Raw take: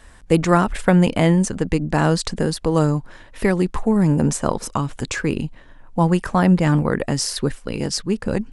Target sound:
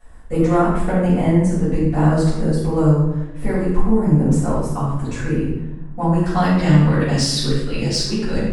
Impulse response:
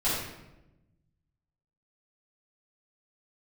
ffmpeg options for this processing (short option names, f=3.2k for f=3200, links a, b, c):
-filter_complex "[0:a]asetnsamples=n=441:p=0,asendcmd='6.26 equalizer g 8.5',equalizer=f=3.9k:w=0.72:g=-9,asoftclip=type=tanh:threshold=-4dB[a];[1:a]atrim=start_sample=2205[b];[a][b]afir=irnorm=-1:irlink=0,volume=-11dB"